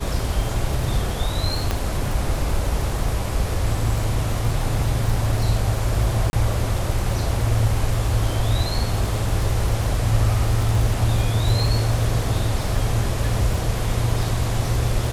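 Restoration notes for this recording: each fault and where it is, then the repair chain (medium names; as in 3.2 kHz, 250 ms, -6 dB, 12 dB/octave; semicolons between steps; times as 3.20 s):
crackle 45 per s -26 dBFS
1.71 s: pop -8 dBFS
6.30–6.33 s: dropout 31 ms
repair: de-click; interpolate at 6.30 s, 31 ms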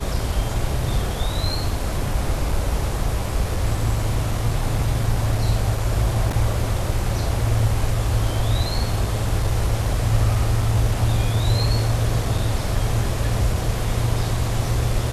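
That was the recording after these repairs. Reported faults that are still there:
nothing left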